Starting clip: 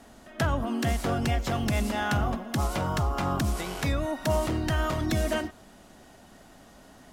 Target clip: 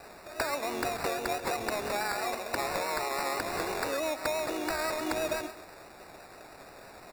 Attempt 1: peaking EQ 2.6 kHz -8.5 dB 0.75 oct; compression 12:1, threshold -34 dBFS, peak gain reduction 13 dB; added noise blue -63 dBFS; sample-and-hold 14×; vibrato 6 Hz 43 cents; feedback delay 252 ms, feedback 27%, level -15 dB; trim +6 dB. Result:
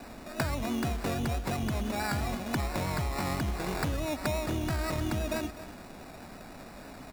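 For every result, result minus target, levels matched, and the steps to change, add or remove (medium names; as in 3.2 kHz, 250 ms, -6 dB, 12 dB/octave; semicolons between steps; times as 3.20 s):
echo 116 ms late; 500 Hz band -3.5 dB
change: feedback delay 136 ms, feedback 27%, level -15 dB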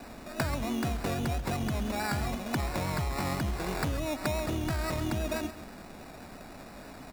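500 Hz band -3.5 dB
add first: Chebyshev high-pass 400 Hz, order 3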